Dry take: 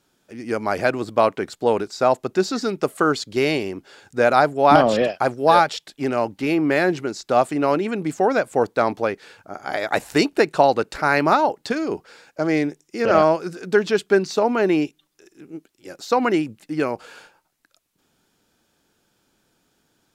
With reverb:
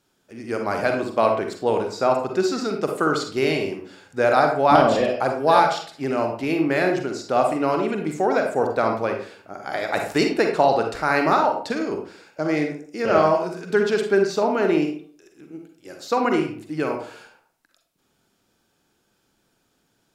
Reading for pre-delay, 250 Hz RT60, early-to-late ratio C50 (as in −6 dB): 39 ms, 0.55 s, 5.0 dB